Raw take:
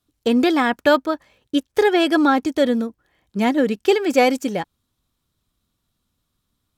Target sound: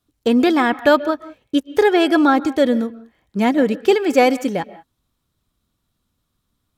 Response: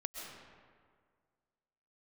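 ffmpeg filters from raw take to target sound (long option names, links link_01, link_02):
-filter_complex "[0:a]asplit=2[link_01][link_02];[1:a]atrim=start_sample=2205,afade=type=out:start_time=0.25:duration=0.01,atrim=end_sample=11466,lowpass=2800[link_03];[link_02][link_03]afir=irnorm=-1:irlink=0,volume=-8.5dB[link_04];[link_01][link_04]amix=inputs=2:normalize=0"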